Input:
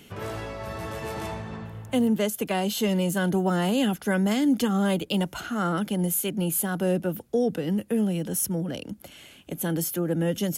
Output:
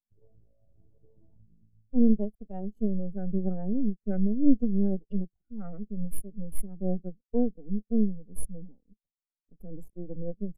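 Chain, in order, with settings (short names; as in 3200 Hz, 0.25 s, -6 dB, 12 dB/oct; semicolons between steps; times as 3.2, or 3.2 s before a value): Wiener smoothing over 41 samples; resonant high shelf 5100 Hz +7 dB, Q 1.5; half-wave rectifier; spectral expander 2.5:1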